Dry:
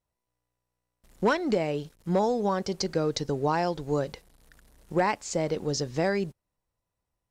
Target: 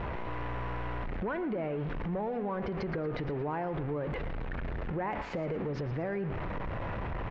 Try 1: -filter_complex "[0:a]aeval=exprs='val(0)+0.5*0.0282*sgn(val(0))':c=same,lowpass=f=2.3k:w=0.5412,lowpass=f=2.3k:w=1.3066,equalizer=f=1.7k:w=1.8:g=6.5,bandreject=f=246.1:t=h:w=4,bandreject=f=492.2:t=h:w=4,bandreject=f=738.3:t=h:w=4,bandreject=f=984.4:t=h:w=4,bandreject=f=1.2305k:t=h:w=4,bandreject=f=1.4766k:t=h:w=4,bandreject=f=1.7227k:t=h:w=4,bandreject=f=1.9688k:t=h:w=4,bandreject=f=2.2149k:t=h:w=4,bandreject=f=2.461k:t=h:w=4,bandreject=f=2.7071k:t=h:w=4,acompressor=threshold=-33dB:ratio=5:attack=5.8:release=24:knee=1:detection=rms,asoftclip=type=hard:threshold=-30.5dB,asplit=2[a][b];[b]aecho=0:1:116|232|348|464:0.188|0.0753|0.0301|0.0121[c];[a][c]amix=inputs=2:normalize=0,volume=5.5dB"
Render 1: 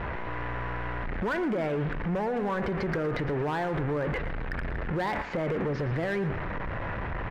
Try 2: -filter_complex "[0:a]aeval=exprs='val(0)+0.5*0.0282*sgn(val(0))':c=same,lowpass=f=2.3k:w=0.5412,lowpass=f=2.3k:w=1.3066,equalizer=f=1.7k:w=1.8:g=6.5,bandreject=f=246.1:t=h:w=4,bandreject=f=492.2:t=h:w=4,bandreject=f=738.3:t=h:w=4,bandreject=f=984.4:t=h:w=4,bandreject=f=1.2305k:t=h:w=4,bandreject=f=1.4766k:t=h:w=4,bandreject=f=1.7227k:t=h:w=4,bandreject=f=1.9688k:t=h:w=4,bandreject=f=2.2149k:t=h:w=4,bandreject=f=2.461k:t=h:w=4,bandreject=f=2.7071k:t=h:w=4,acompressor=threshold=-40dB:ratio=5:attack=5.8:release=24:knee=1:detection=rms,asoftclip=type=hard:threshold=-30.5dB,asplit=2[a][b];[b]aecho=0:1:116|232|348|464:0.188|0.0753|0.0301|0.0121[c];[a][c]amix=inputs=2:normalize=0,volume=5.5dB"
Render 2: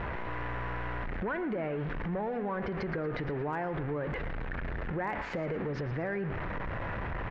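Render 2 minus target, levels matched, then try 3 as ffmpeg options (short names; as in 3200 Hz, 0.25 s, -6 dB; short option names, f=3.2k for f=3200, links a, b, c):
2000 Hz band +4.0 dB
-filter_complex "[0:a]aeval=exprs='val(0)+0.5*0.0282*sgn(val(0))':c=same,lowpass=f=2.3k:w=0.5412,lowpass=f=2.3k:w=1.3066,bandreject=f=246.1:t=h:w=4,bandreject=f=492.2:t=h:w=4,bandreject=f=738.3:t=h:w=4,bandreject=f=984.4:t=h:w=4,bandreject=f=1.2305k:t=h:w=4,bandreject=f=1.4766k:t=h:w=4,bandreject=f=1.7227k:t=h:w=4,bandreject=f=1.9688k:t=h:w=4,bandreject=f=2.2149k:t=h:w=4,bandreject=f=2.461k:t=h:w=4,bandreject=f=2.7071k:t=h:w=4,acompressor=threshold=-40dB:ratio=5:attack=5.8:release=24:knee=1:detection=rms,asoftclip=type=hard:threshold=-30.5dB,asplit=2[a][b];[b]aecho=0:1:116|232|348|464:0.188|0.0753|0.0301|0.0121[c];[a][c]amix=inputs=2:normalize=0,volume=5.5dB"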